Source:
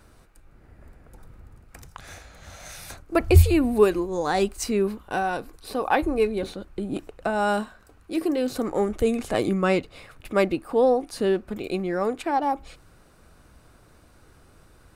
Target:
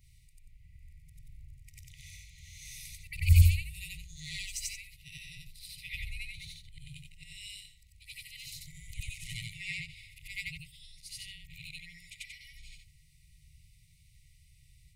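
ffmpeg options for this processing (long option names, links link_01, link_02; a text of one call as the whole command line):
ffmpeg -i in.wav -af "afftfilt=real='re':imag='-im':win_size=8192:overlap=0.75,afftfilt=real='re*(1-between(b*sr/4096,170,1900))':imag='im*(1-between(b*sr/4096,170,1900))':win_size=4096:overlap=0.75" out.wav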